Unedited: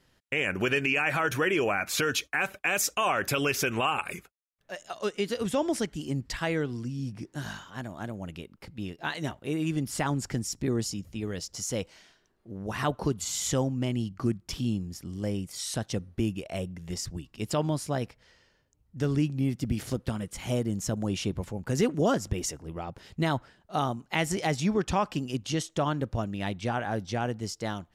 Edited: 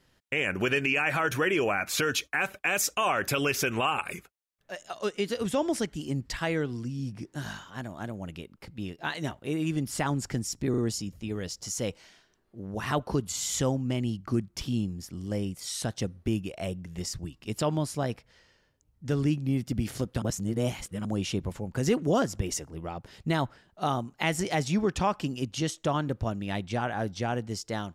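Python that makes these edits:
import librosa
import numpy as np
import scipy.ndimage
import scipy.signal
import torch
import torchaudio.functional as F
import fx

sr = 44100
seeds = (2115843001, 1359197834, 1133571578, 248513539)

y = fx.edit(x, sr, fx.stutter(start_s=10.7, slice_s=0.04, count=3),
    fx.reverse_span(start_s=20.14, length_s=0.83), tone=tone)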